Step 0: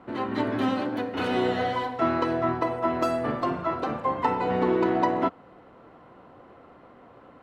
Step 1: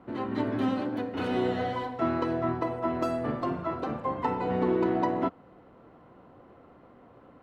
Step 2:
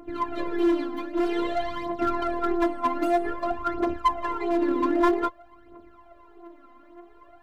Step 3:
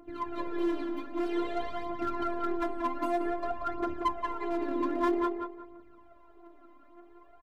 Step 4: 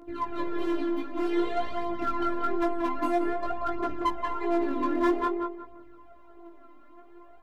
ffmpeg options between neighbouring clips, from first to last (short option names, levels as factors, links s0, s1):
-af "lowshelf=f=490:g=6.5,volume=0.473"
-af "afftfilt=real='hypot(re,im)*cos(PI*b)':imag='0':win_size=512:overlap=0.75,aphaser=in_gain=1:out_gain=1:delay=4:decay=0.74:speed=0.52:type=triangular,aeval=exprs='clip(val(0),-1,0.0944)':c=same,volume=1.58"
-filter_complex "[0:a]asplit=2[s0][s1];[s1]adelay=182,lowpass=f=2100:p=1,volume=0.631,asplit=2[s2][s3];[s3]adelay=182,lowpass=f=2100:p=1,volume=0.31,asplit=2[s4][s5];[s5]adelay=182,lowpass=f=2100:p=1,volume=0.31,asplit=2[s6][s7];[s7]adelay=182,lowpass=f=2100:p=1,volume=0.31[s8];[s0][s2][s4][s6][s8]amix=inputs=5:normalize=0,volume=0.422"
-af "flanger=delay=17.5:depth=2.3:speed=1.1,volume=2.11"